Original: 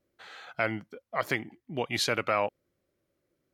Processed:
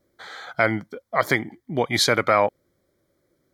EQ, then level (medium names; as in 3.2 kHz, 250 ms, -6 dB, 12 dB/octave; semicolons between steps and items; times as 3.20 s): Butterworth band-stop 2.7 kHz, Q 3.5; +9.0 dB